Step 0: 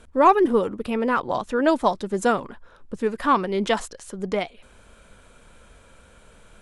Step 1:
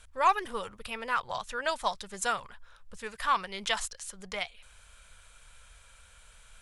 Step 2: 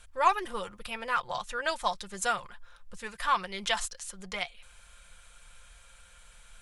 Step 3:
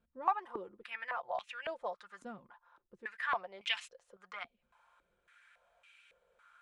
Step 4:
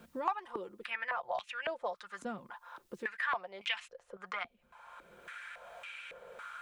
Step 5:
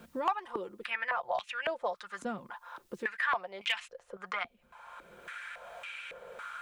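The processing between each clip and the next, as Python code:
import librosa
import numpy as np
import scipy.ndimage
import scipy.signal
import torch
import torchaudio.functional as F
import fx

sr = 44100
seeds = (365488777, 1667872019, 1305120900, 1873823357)

y1 = fx.tone_stack(x, sr, knobs='10-0-10')
y1 = y1 * 10.0 ** (2.0 / 20.0)
y2 = y1 + 0.4 * np.pad(y1, (int(5.7 * sr / 1000.0), 0))[:len(y1)]
y3 = fx.filter_held_bandpass(y2, sr, hz=3.6, low_hz=250.0, high_hz=2500.0)
y3 = y3 * 10.0 ** (2.5 / 20.0)
y4 = fx.band_squash(y3, sr, depth_pct=70)
y4 = y4 * 10.0 ** (3.0 / 20.0)
y5 = np.clip(10.0 ** (22.5 / 20.0) * y4, -1.0, 1.0) / 10.0 ** (22.5 / 20.0)
y5 = y5 * 10.0 ** (3.5 / 20.0)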